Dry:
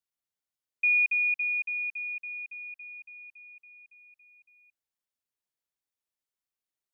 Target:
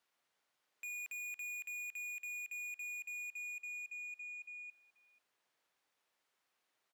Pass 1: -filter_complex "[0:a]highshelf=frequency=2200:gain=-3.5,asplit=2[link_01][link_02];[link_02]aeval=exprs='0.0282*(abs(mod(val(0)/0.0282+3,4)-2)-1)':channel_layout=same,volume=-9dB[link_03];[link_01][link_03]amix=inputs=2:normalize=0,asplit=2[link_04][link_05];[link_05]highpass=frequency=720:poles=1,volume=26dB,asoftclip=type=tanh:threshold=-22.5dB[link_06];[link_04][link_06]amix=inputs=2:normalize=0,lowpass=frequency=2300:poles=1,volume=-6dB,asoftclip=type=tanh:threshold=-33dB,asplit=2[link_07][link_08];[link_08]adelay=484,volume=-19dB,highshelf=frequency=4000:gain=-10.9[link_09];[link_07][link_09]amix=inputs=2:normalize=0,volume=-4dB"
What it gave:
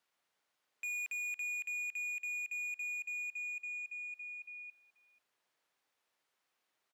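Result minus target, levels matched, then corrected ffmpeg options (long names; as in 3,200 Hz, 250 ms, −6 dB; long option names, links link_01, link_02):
soft clipping: distortion −4 dB
-filter_complex "[0:a]highshelf=frequency=2200:gain=-3.5,asplit=2[link_01][link_02];[link_02]aeval=exprs='0.0282*(abs(mod(val(0)/0.0282+3,4)-2)-1)':channel_layout=same,volume=-9dB[link_03];[link_01][link_03]amix=inputs=2:normalize=0,asplit=2[link_04][link_05];[link_05]highpass=frequency=720:poles=1,volume=26dB,asoftclip=type=tanh:threshold=-22.5dB[link_06];[link_04][link_06]amix=inputs=2:normalize=0,lowpass=frequency=2300:poles=1,volume=-6dB,asoftclip=type=tanh:threshold=-39dB,asplit=2[link_07][link_08];[link_08]adelay=484,volume=-19dB,highshelf=frequency=4000:gain=-10.9[link_09];[link_07][link_09]amix=inputs=2:normalize=0,volume=-4dB"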